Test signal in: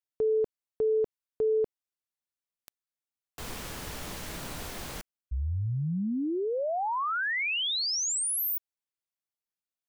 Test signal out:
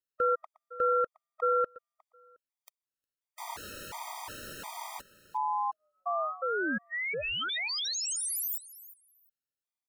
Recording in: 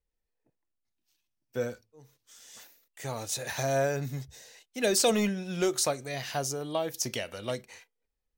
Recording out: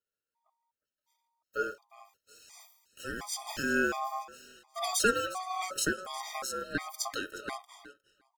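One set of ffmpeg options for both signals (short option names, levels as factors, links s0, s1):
-af "aecho=1:1:359|718:0.141|0.0226,aeval=exprs='val(0)*sin(2*PI*930*n/s)':c=same,afftfilt=real='re*gt(sin(2*PI*1.4*pts/sr)*(1-2*mod(floor(b*sr/1024/630),2)),0)':imag='im*gt(sin(2*PI*1.4*pts/sr)*(1-2*mod(floor(b*sr/1024/630),2)),0)':win_size=1024:overlap=0.75,volume=1.33"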